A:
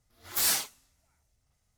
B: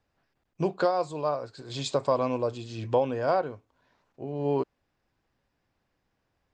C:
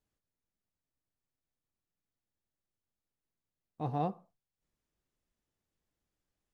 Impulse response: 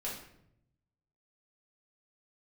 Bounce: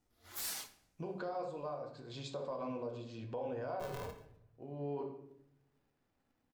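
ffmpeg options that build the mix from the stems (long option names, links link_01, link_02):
-filter_complex "[0:a]volume=-11.5dB,asplit=2[link_01][link_02];[link_02]volume=-11dB[link_03];[1:a]highshelf=frequency=5900:gain=-10,adelay=400,volume=-8.5dB,asplit=2[link_04][link_05];[link_05]volume=-8dB[link_06];[2:a]tiltshelf=frequency=970:gain=6,acompressor=threshold=-33dB:ratio=6,aeval=exprs='val(0)*sgn(sin(2*PI*270*n/s))':channel_layout=same,volume=-2.5dB,asplit=3[link_07][link_08][link_09];[link_08]volume=-11.5dB[link_10];[link_09]apad=whole_len=305614[link_11];[link_04][link_11]sidechaincompress=threshold=-52dB:ratio=8:attack=6.6:release=702[link_12];[link_12][link_07]amix=inputs=2:normalize=0,acompressor=threshold=-51dB:ratio=2,volume=0dB[link_13];[3:a]atrim=start_sample=2205[link_14];[link_03][link_06][link_10]amix=inputs=3:normalize=0[link_15];[link_15][link_14]afir=irnorm=-1:irlink=0[link_16];[link_01][link_13][link_16]amix=inputs=3:normalize=0,alimiter=level_in=7.5dB:limit=-24dB:level=0:latency=1:release=61,volume=-7.5dB"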